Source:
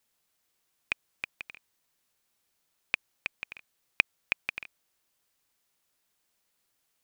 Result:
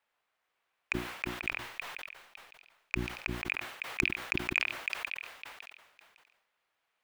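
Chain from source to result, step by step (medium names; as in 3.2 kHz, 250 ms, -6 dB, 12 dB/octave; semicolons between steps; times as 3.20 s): 1.42–3.31 s: partial rectifier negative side -3 dB; treble shelf 4.6 kHz -7 dB; in parallel at -2 dB: peak limiter -14.5 dBFS, peak gain reduction 10.5 dB; on the sum: three-band isolator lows -14 dB, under 510 Hz, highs -16 dB, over 2.9 kHz; hum notches 60/120/180/240/300/360 Hz; repeats whose band climbs or falls 557 ms, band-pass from 2.8 kHz, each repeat 0.7 oct, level -3 dB; saturation -14.5 dBFS, distortion -12 dB; decay stretcher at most 68 dB/s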